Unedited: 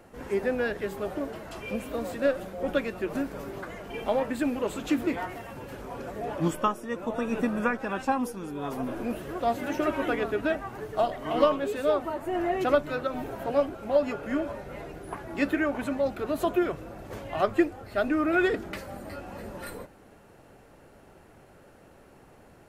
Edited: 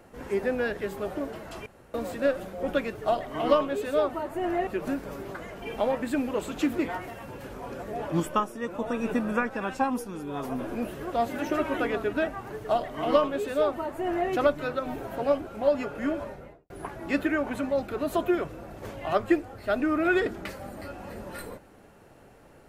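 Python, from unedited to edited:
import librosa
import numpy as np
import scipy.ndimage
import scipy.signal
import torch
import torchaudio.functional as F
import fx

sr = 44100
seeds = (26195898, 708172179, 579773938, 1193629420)

y = fx.studio_fade_out(x, sr, start_s=14.51, length_s=0.47)
y = fx.edit(y, sr, fx.room_tone_fill(start_s=1.66, length_s=0.28),
    fx.duplicate(start_s=10.86, length_s=1.72, to_s=2.95), tone=tone)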